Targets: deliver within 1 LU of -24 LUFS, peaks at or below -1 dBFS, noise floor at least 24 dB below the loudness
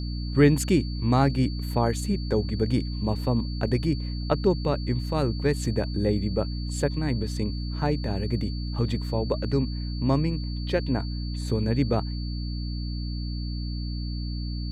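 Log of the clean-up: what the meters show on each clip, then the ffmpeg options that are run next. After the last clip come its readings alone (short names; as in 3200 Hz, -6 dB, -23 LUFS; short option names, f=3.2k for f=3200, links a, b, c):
hum 60 Hz; harmonics up to 300 Hz; hum level -28 dBFS; steady tone 4500 Hz; tone level -42 dBFS; loudness -27.0 LUFS; peak -7.0 dBFS; loudness target -24.0 LUFS
-> -af "bandreject=f=60:t=h:w=6,bandreject=f=120:t=h:w=6,bandreject=f=180:t=h:w=6,bandreject=f=240:t=h:w=6,bandreject=f=300:t=h:w=6"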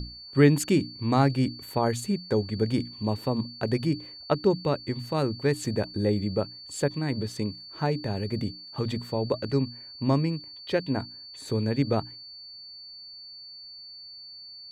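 hum none; steady tone 4500 Hz; tone level -42 dBFS
-> -af "bandreject=f=4.5k:w=30"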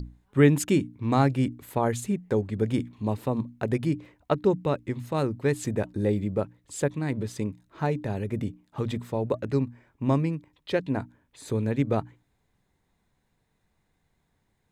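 steady tone none; loudness -28.0 LUFS; peak -7.0 dBFS; loudness target -24.0 LUFS
-> -af "volume=4dB"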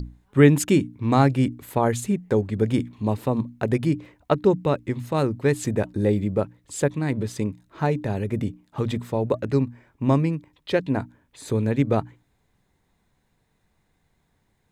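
loudness -24.0 LUFS; peak -3.0 dBFS; noise floor -69 dBFS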